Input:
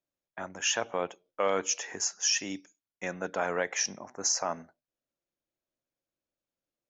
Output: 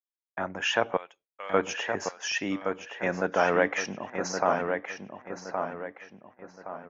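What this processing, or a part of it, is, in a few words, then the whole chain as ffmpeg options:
hearing-loss simulation: -filter_complex "[0:a]asettb=1/sr,asplit=3[link_01][link_02][link_03];[link_01]atrim=end=0.974[link_04];[link_02]atrim=start=0.97:end=1.54,asetpts=PTS-STARTPTS,afade=type=in:duration=0.004:curve=qsin,afade=type=out:start_time=0.566:duration=0.004:curve=qsin,aderivative[link_05];[link_03]atrim=start=1.536[link_06];[link_04][link_05]acrossfade=duration=0.004:curve1=hsin:curve2=qsin[link_07];[link_07][link_06]acrossfade=duration=0.004:curve1=qsin:curve2=hsin,lowpass=2400,asplit=2[link_08][link_09];[link_09]adelay=1119,lowpass=frequency=2900:poles=1,volume=-5.5dB,asplit=2[link_10][link_11];[link_11]adelay=1119,lowpass=frequency=2900:poles=1,volume=0.4,asplit=2[link_12][link_13];[link_13]adelay=1119,lowpass=frequency=2900:poles=1,volume=0.4,asplit=2[link_14][link_15];[link_15]adelay=1119,lowpass=frequency=2900:poles=1,volume=0.4,asplit=2[link_16][link_17];[link_17]adelay=1119,lowpass=frequency=2900:poles=1,volume=0.4[link_18];[link_08][link_10][link_12][link_14][link_16][link_18]amix=inputs=6:normalize=0,agate=range=-33dB:threshold=-58dB:ratio=3:detection=peak,volume=7dB"

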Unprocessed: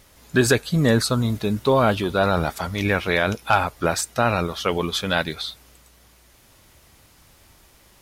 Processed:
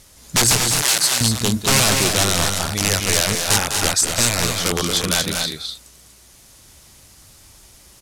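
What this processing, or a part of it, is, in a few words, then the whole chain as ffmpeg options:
overflowing digital effects unit: -filter_complex "[0:a]aeval=exprs='(mod(4.73*val(0)+1,2)-1)/4.73':channel_layout=same,lowpass=9500,highshelf=frequency=11000:gain=5,asettb=1/sr,asplit=3[link_01][link_02][link_03];[link_01]atrim=end=0.614[link_04];[link_02]atrim=start=0.61:end=1.21,asetpts=PTS-STARTPTS,afade=type=in:duration=0.004:curve=qsin,afade=type=out:start_time=0.596:duration=0.004:curve=qsin,highpass=frequency=1400:poles=1[link_05];[link_03]atrim=start=1.206[link_06];[link_04][link_05]acrossfade=duration=0.004:curve1=hsin:curve2=qsin[link_07];[link_07][link_06]acrossfade=duration=0.004:curve1=qsin:curve2=hsin,bass=frequency=250:gain=3,treble=frequency=4000:gain=10,aecho=1:1:201.2|242:0.398|0.501"

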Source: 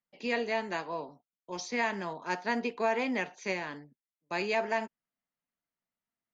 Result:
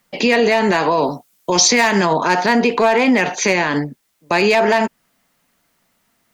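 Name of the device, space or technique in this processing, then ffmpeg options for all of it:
loud club master: -filter_complex "[0:a]acompressor=threshold=-36dB:ratio=1.5,asoftclip=type=hard:threshold=-26.5dB,alimiter=level_in=35dB:limit=-1dB:release=50:level=0:latency=1,asettb=1/sr,asplit=3[link_01][link_02][link_03];[link_01]atrim=end=0.914[link_04];[link_02]atrim=start=0.91:end=2.06,asetpts=PTS-STARTPTS,afade=type=in:duration=0.004:curve=qsin,afade=type=out:start_time=1.146:duration=0.004:curve=qsin,aemphasis=mode=production:type=cd[link_05];[link_03]atrim=start=2.056[link_06];[link_04][link_05]acrossfade=duration=0.004:curve1=hsin:curve2=qsin[link_07];[link_07][link_06]acrossfade=duration=0.004:curve1=qsin:curve2=hsin,volume=-6dB"

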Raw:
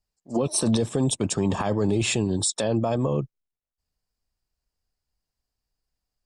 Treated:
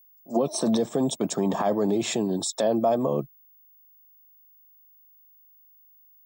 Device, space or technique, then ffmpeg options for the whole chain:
old television with a line whistle: -af "highpass=frequency=170:width=0.5412,highpass=frequency=170:width=1.3066,equalizer=frequency=670:width_type=q:width=4:gain=7,equalizer=frequency=1500:width_type=q:width=4:gain=-3,equalizer=frequency=2700:width_type=q:width=4:gain=-10,equalizer=frequency=4600:width_type=q:width=4:gain=-5,lowpass=frequency=7200:width=0.5412,lowpass=frequency=7200:width=1.3066,aeval=exprs='val(0)+0.002*sin(2*PI*15625*n/s)':channel_layout=same"

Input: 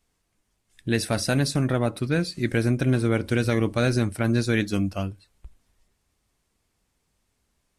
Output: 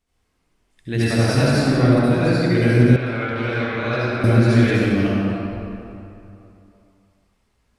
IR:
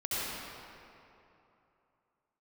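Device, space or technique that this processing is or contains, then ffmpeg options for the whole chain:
swimming-pool hall: -filter_complex "[1:a]atrim=start_sample=2205[link_01];[0:a][link_01]afir=irnorm=-1:irlink=0,highshelf=frequency=5400:gain=-6.5,asettb=1/sr,asplit=3[link_02][link_03][link_04];[link_02]atrim=end=2.964[link_05];[link_03]atrim=start=2.96:end=4.24,asetpts=PTS-STARTPTS,afade=type=in:duration=0.004:curve=qsin,afade=type=out:start_time=1.276:duration=0.004:curve=qsin,acrossover=split=590 4400:gain=0.251 1 0.0794[link_06][link_07][link_08];[link_06][link_07][link_08]amix=inputs=3:normalize=0[link_09];[link_04]atrim=start=4.236[link_10];[link_05][link_09]acrossfade=duration=0.004:curve1=hsin:curve2=qsin[link_11];[link_11][link_10]acrossfade=duration=0.004:curve1=qsin:curve2=hsin"

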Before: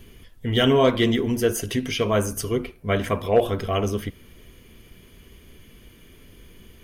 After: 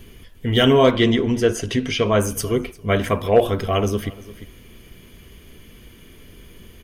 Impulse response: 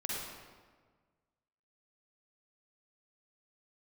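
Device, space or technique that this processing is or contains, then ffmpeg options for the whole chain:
ducked delay: -filter_complex "[0:a]asplit=3[link_01][link_02][link_03];[link_02]adelay=348,volume=-9dB[link_04];[link_03]apad=whole_len=316786[link_05];[link_04][link_05]sidechaincompress=threshold=-38dB:ratio=8:attack=16:release=469[link_06];[link_01][link_06]amix=inputs=2:normalize=0,asettb=1/sr,asplit=3[link_07][link_08][link_09];[link_07]atrim=end=0.914[link_10];[link_08]atrim=start=0.91:end=2.2,asetpts=PTS-STARTPTS,afade=type=in:duration=0.004:curve=qsin,afade=type=out:start_time=1.286:duration=0.004:curve=qsin,lowpass=6600[link_11];[link_09]atrim=start=2.196[link_12];[link_10][link_11]acrossfade=duration=0.004:curve1=hsin:curve2=qsin[link_13];[link_13][link_12]acrossfade=duration=0.004:curve1=qsin:curve2=hsin,volume=3.5dB"

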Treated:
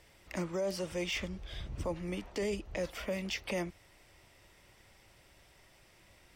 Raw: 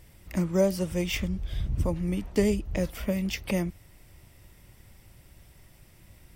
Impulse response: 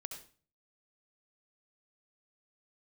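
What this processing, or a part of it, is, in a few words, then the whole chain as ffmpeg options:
DJ mixer with the lows and highs turned down: -filter_complex "[0:a]acrossover=split=350 7600:gain=0.224 1 0.224[link_01][link_02][link_03];[link_01][link_02][link_03]amix=inputs=3:normalize=0,alimiter=level_in=2dB:limit=-24dB:level=0:latency=1:release=14,volume=-2dB"

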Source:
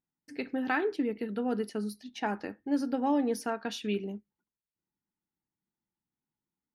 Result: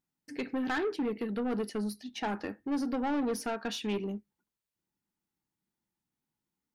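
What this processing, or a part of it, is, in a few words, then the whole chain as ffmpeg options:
saturation between pre-emphasis and de-emphasis: -af "highshelf=frequency=7700:gain=10,asoftclip=type=tanh:threshold=-30dB,highshelf=frequency=7700:gain=-10,volume=3dB"

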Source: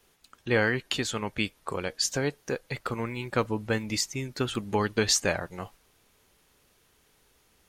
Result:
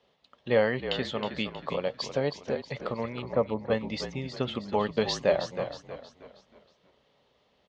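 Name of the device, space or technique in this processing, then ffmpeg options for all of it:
frequency-shifting delay pedal into a guitar cabinet: -filter_complex "[0:a]asettb=1/sr,asplit=3[link_01][link_02][link_03];[link_01]atrim=end=3.224[link_04];[link_02]atrim=start=3.22:end=3.7,asetpts=PTS-STARTPTS,afade=type=in:duration=0.004:curve=qsin,afade=type=out:start_time=0.476:duration=0.004:curve=qsin,lowpass=1100[link_05];[link_03]atrim=start=3.696[link_06];[link_04][link_05]acrossfade=duration=0.004:curve1=hsin:curve2=qsin[link_07];[link_07][link_06]acrossfade=duration=0.004:curve1=qsin:curve2=hsin,asplit=6[link_08][link_09][link_10][link_11][link_12][link_13];[link_09]adelay=317,afreqshift=-44,volume=-9dB[link_14];[link_10]adelay=634,afreqshift=-88,volume=-16.5dB[link_15];[link_11]adelay=951,afreqshift=-132,volume=-24.1dB[link_16];[link_12]adelay=1268,afreqshift=-176,volume=-31.6dB[link_17];[link_13]adelay=1585,afreqshift=-220,volume=-39.1dB[link_18];[link_08][link_14][link_15][link_16][link_17][link_18]amix=inputs=6:normalize=0,highpass=92,equalizer=frequency=95:width_type=q:width=4:gain=-10,equalizer=frequency=330:width_type=q:width=4:gain=-8,equalizer=frequency=580:width_type=q:width=4:gain=9,equalizer=frequency=1500:width_type=q:width=4:gain=-10,equalizer=frequency=2400:width_type=q:width=4:gain=-7,lowpass=frequency=3800:width=0.5412,lowpass=frequency=3800:width=1.3066,highshelf=frequency=6800:gain=5.5"

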